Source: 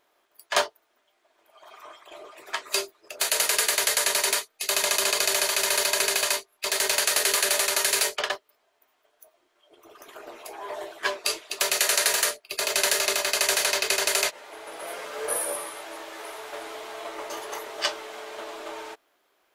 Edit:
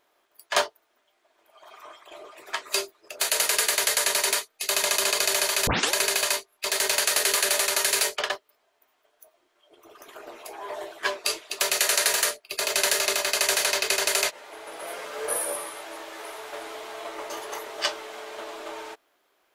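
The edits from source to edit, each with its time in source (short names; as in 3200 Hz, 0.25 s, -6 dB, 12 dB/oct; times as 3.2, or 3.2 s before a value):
5.67 tape start 0.26 s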